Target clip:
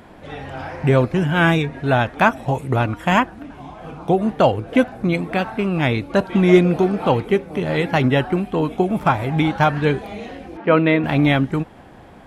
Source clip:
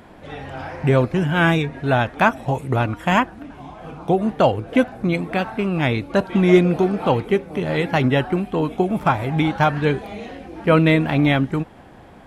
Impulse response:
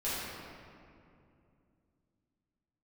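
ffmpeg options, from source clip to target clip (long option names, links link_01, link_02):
-filter_complex "[0:a]asettb=1/sr,asplit=3[link_01][link_02][link_03];[link_01]atrim=end=10.574[link_04];[link_02]atrim=start=10.57:end=11.04,asetpts=PTS-STARTPTS,afade=type=in:duration=0.004:curve=qsin,afade=type=out:start_time=0.466:duration=0.004:curve=qsin,highpass=210,lowpass=2900[link_05];[link_03]atrim=start=11.036[link_06];[link_04][link_05]acrossfade=duration=0.004:curve1=hsin:curve2=qsin[link_07];[link_07][link_06]acrossfade=duration=0.004:curve1=qsin:curve2=hsin,volume=1dB"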